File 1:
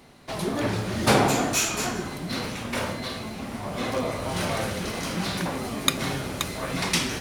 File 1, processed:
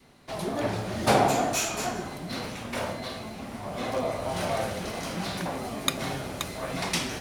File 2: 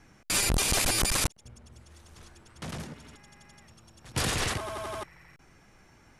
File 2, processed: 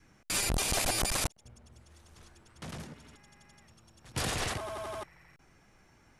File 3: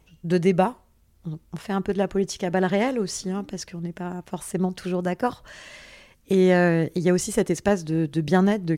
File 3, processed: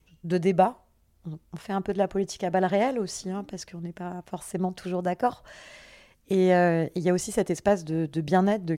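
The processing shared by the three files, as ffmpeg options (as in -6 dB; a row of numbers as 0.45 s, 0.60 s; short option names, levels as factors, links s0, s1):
-af "adynamicequalizer=threshold=0.01:dfrequency=690:dqfactor=2.2:tfrequency=690:tqfactor=2.2:attack=5:release=100:ratio=0.375:range=4:mode=boostabove:tftype=bell,volume=0.596"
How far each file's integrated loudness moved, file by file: -3.0 LU, -4.0 LU, -2.5 LU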